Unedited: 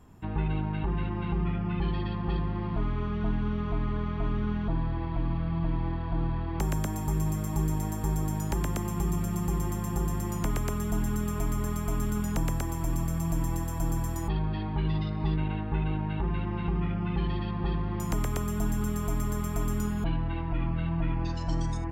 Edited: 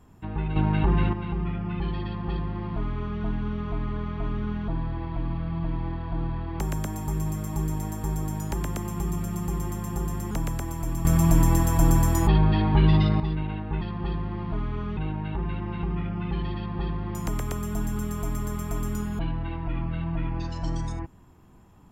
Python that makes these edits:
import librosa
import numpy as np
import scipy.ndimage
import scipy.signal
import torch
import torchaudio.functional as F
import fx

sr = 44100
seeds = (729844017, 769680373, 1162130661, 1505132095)

y = fx.edit(x, sr, fx.clip_gain(start_s=0.56, length_s=0.57, db=8.0),
    fx.duplicate(start_s=2.05, length_s=1.16, to_s=15.82),
    fx.cut(start_s=10.31, length_s=2.01),
    fx.clip_gain(start_s=13.06, length_s=2.15, db=10.0), tone=tone)